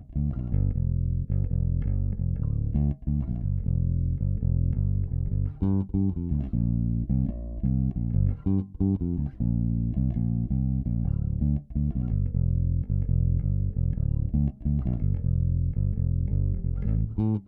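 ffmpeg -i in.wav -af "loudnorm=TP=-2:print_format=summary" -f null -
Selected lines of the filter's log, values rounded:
Input Integrated:    -27.5 LUFS
Input True Peak:     -13.8 dBTP
Input LRA:             0.6 LU
Input Threshold:     -37.5 LUFS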